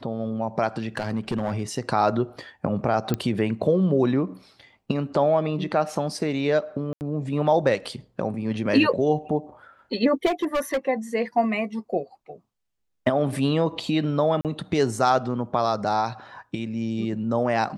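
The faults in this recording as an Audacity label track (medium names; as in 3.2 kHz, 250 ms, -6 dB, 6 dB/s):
0.970000	1.620000	clipped -20 dBFS
3.140000	3.140000	pop -11 dBFS
6.930000	7.010000	dropout 79 ms
10.250000	10.780000	clipped -19.5 dBFS
14.410000	14.450000	dropout 38 ms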